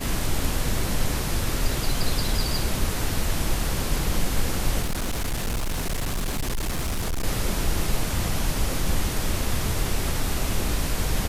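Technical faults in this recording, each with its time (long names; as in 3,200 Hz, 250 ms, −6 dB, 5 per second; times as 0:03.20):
0:04.82–0:07.25: clipping −22.5 dBFS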